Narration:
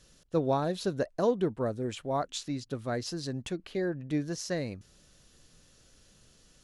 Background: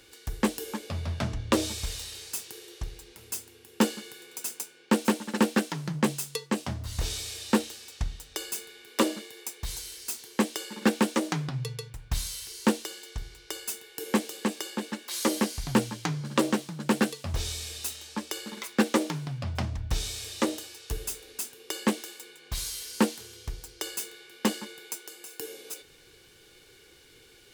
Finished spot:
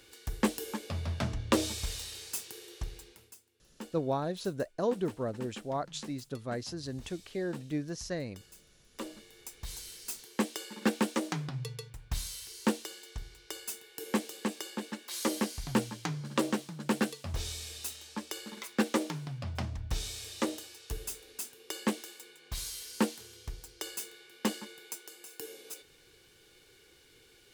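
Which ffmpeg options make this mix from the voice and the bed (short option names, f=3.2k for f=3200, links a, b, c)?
-filter_complex "[0:a]adelay=3600,volume=-3.5dB[a];[1:a]volume=14dB,afade=t=out:st=3.01:d=0.34:silence=0.112202,afade=t=in:st=8.89:d=1.01:silence=0.149624[b];[a][b]amix=inputs=2:normalize=0"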